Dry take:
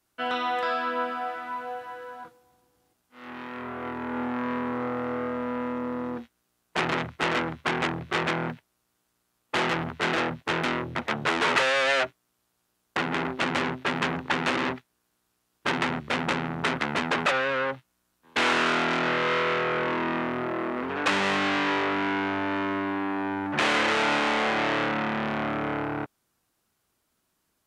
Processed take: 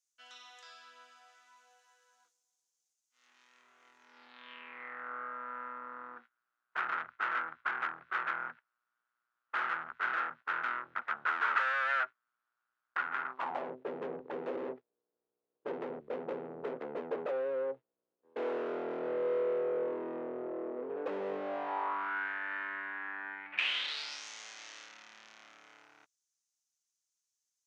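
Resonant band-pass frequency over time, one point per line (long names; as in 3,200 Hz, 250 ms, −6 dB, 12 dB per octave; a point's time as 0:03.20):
resonant band-pass, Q 4.6
0:03.98 6,500 Hz
0:05.12 1,400 Hz
0:13.26 1,400 Hz
0:13.76 470 Hz
0:21.36 470 Hz
0:22.29 1,700 Hz
0:23.29 1,700 Hz
0:24.26 6,300 Hz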